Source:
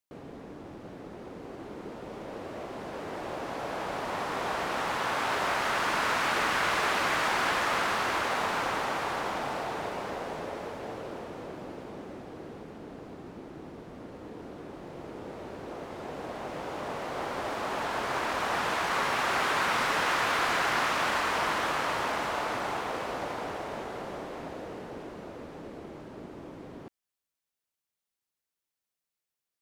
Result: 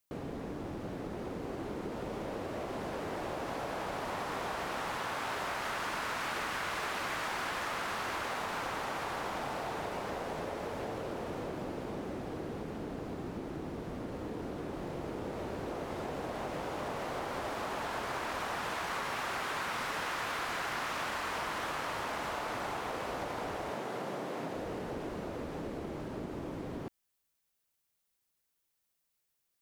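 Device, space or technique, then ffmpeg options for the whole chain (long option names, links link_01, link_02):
ASMR close-microphone chain: -filter_complex "[0:a]asettb=1/sr,asplit=3[link_01][link_02][link_03];[link_01]atrim=end=23.704[link_04];[link_02]atrim=start=23.7:end=24.54,asetpts=PTS-STARTPTS,afade=type=in:duration=0.004:curve=qsin,afade=type=out:start_time=0.836:duration=0.004:curve=qsin,highpass=frequency=120:width=0.5412,highpass=frequency=120:width=1.3066[link_05];[link_03]atrim=start=24.536[link_06];[link_04][link_05]acrossfade=duration=0.004:curve1=hsin:curve2=qsin[link_07];[link_07][link_06]acrossfade=duration=0.004:curve1=qsin:curve2=hsin,lowshelf=frequency=120:gain=6,acompressor=threshold=-39dB:ratio=5,highshelf=frequency=10000:gain=6,volume=4dB"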